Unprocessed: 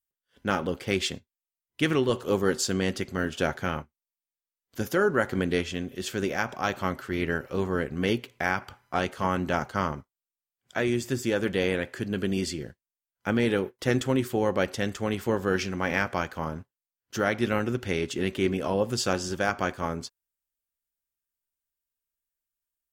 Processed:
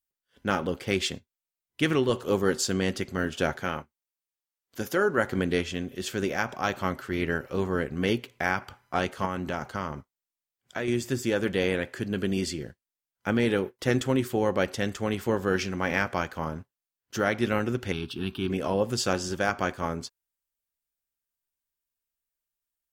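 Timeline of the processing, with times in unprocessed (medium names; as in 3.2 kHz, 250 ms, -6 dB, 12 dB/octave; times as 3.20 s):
3.60–5.18 s: bass shelf 170 Hz -7.5 dB
9.25–10.88 s: compression 2:1, threshold -29 dBFS
17.92–18.50 s: static phaser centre 2 kHz, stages 6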